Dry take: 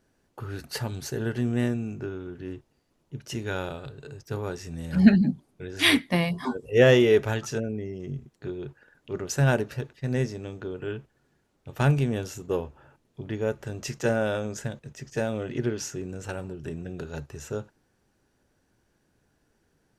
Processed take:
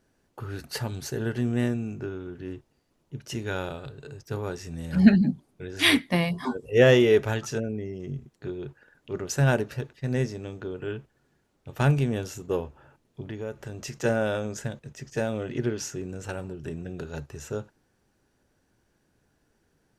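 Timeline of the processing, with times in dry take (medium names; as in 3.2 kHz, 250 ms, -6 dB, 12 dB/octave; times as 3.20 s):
13.27–13.97 s: compression 2:1, threshold -34 dBFS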